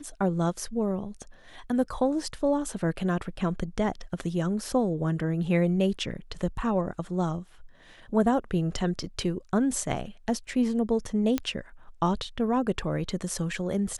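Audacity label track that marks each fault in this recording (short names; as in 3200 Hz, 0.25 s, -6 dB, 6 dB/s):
11.380000	11.380000	pop -13 dBFS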